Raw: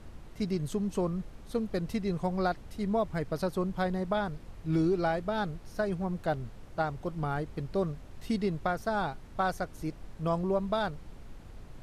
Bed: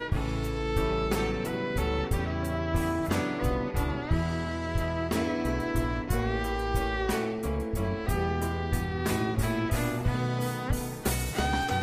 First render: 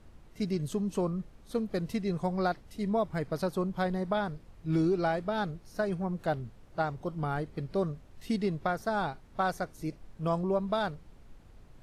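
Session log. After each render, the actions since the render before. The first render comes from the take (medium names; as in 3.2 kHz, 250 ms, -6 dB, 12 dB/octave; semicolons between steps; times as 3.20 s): noise print and reduce 7 dB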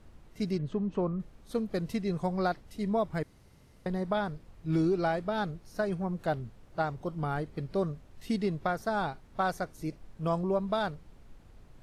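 0.58–1.20 s: low-pass 2.3 kHz; 3.23–3.86 s: room tone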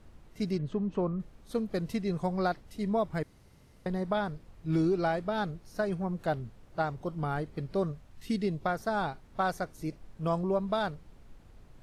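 7.91–8.65 s: peaking EQ 250 Hz -> 1.8 kHz -8.5 dB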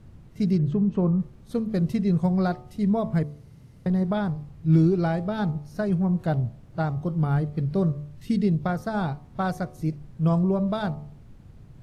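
peaking EQ 130 Hz +14.5 dB 1.9 oct; de-hum 73.48 Hz, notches 17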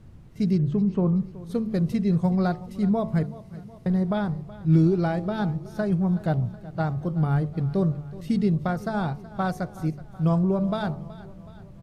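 feedback delay 373 ms, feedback 56%, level -18 dB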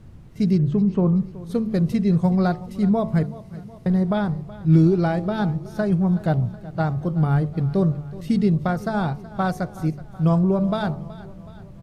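trim +3.5 dB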